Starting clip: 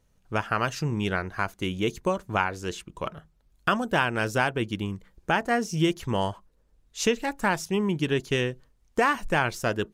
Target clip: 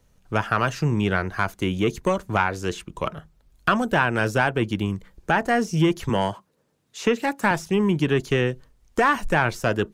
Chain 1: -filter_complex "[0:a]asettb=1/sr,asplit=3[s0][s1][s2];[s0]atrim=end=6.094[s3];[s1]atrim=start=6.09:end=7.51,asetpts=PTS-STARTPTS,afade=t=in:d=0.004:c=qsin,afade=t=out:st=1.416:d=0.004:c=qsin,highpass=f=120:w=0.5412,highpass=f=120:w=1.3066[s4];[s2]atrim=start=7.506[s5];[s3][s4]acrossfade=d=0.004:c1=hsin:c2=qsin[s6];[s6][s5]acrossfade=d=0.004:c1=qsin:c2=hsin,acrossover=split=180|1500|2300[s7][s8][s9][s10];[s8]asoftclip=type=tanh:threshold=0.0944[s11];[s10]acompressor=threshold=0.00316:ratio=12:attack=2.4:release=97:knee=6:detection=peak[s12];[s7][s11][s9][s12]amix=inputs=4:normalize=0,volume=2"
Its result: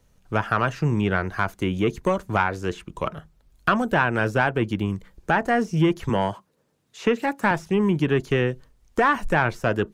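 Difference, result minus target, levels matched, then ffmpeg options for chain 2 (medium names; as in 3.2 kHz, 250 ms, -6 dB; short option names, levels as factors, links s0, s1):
compression: peak gain reduction +8.5 dB
-filter_complex "[0:a]asettb=1/sr,asplit=3[s0][s1][s2];[s0]atrim=end=6.094[s3];[s1]atrim=start=6.09:end=7.51,asetpts=PTS-STARTPTS,afade=t=in:d=0.004:c=qsin,afade=t=out:st=1.416:d=0.004:c=qsin,highpass=f=120:w=0.5412,highpass=f=120:w=1.3066[s4];[s2]atrim=start=7.506[s5];[s3][s4]acrossfade=d=0.004:c1=hsin:c2=qsin[s6];[s6][s5]acrossfade=d=0.004:c1=qsin:c2=hsin,acrossover=split=180|1500|2300[s7][s8][s9][s10];[s8]asoftclip=type=tanh:threshold=0.0944[s11];[s10]acompressor=threshold=0.00944:ratio=12:attack=2.4:release=97:knee=6:detection=peak[s12];[s7][s11][s9][s12]amix=inputs=4:normalize=0,volume=2"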